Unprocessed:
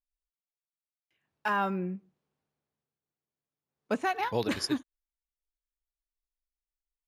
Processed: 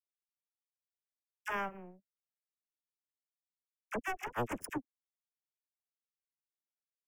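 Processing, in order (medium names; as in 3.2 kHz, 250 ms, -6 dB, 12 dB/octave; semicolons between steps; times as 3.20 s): power-law waveshaper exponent 3; Butterworth band-stop 4.1 kHz, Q 1.1; phase dispersion lows, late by 46 ms, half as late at 1 kHz; compression 2.5:1, threshold -37 dBFS, peak gain reduction 5 dB; trim +5 dB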